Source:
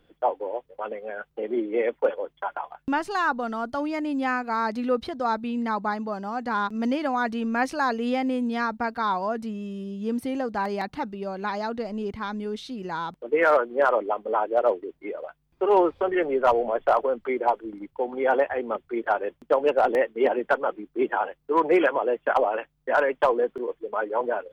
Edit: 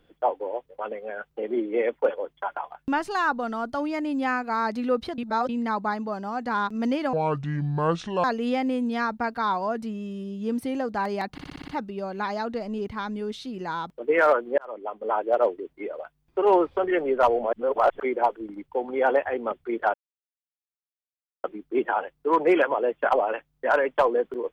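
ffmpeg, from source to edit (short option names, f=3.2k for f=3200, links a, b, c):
-filter_complex "[0:a]asplit=16[a][b][c][d][e][f][g][h][i][j][k][l][m][n][o][p];[a]atrim=end=5.182[q];[b]atrim=start=5.178:end=5.492,asetpts=PTS-STARTPTS,areverse[r];[c]atrim=start=5.488:end=7.134[s];[d]atrim=start=7.13:end=7.84,asetpts=PTS-STARTPTS,asetrate=28224,aresample=44100,atrim=end_sample=48923,asetpts=PTS-STARTPTS[t];[e]atrim=start=7.836:end=10.982[u];[f]atrim=start=10.918:end=10.982[v];[g]atrim=start=10.918:end=10.982[w];[h]atrim=start=10.918:end=10.982[x];[i]atrim=start=10.918:end=10.982[y];[j]atrim=start=10.918:end=10.982[z];[k]atrim=start=10.918:end=13.82,asetpts=PTS-STARTPTS,afade=t=out:st=2.898:d=0.004:c=hsin[aa];[l]atrim=start=13.82:end=16.772,asetpts=PTS-STARTPTS,afade=t=in:d=0.64[ab];[m]atrim=start=16.768:end=17.242,asetpts=PTS-STARTPTS,areverse[ac];[n]atrim=start=17.238:end=19.18,asetpts=PTS-STARTPTS,afade=t=out:st=1.938:d=0.004:c=hsin[ad];[o]atrim=start=19.18:end=20.68,asetpts=PTS-STARTPTS,volume=0[ae];[p]atrim=start=20.68,asetpts=PTS-STARTPTS,afade=t=in:d=0.004:c=hsin[af];[q][r]acrossfade=d=0.004:c1=hsin:c2=hsin[ag];[ag][s]acrossfade=d=0.004:c1=hsin:c2=hsin[ah];[ah][t]acrossfade=d=0.004:c1=hsin:c2=hsin[ai];[ai][u]acrossfade=d=0.004:c1=hsin:c2=hsin[aj];[aj][v]acrossfade=d=0.004:c1=hsin:c2=hsin[ak];[ak][w]acrossfade=d=0.004:c1=hsin:c2=hsin[al];[al][x]acrossfade=d=0.004:c1=hsin:c2=hsin[am];[am][y]acrossfade=d=0.004:c1=hsin:c2=hsin[an];[an][z]acrossfade=d=0.004:c1=hsin:c2=hsin[ao];[aa][ab]concat=n=2:v=0:a=1[ap];[ao][ap]acrossfade=d=0.004:c1=hsin:c2=hsin[aq];[aq][ac]acrossfade=d=0.004:c1=hsin:c2=hsin[ar];[ad][ae][af]concat=n=3:v=0:a=1[as];[ar][as]acrossfade=d=0.004:c1=hsin:c2=hsin"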